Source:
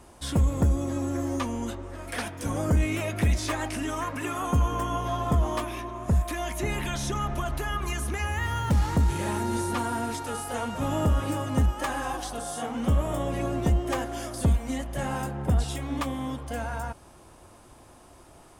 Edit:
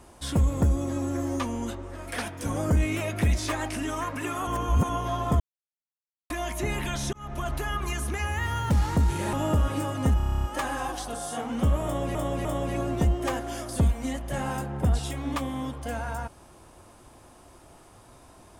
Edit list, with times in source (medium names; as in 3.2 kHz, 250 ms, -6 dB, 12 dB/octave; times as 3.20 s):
4.47–4.89 s: reverse
5.40–6.30 s: mute
7.13–7.47 s: fade in
9.33–10.85 s: delete
11.69 s: stutter 0.03 s, 10 plays
13.10–13.40 s: loop, 3 plays